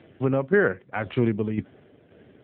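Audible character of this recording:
tremolo saw down 1.9 Hz, depth 55%
AMR narrowband

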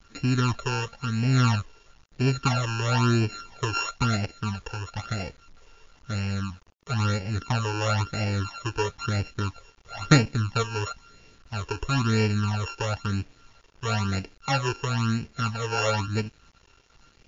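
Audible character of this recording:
a buzz of ramps at a fixed pitch in blocks of 32 samples
phaser sweep stages 12, 1 Hz, lowest notch 200–1,200 Hz
a quantiser's noise floor 10 bits, dither none
MP3

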